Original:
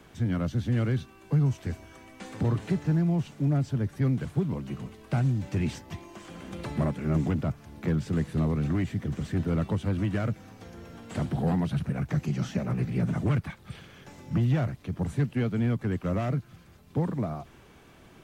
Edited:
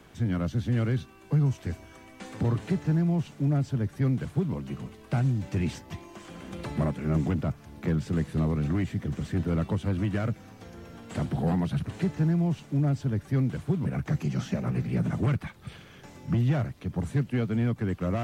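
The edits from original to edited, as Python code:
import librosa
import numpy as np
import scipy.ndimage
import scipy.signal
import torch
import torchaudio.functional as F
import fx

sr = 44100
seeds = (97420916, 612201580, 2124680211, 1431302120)

y = fx.edit(x, sr, fx.duplicate(start_s=2.56, length_s=1.97, to_s=11.88), tone=tone)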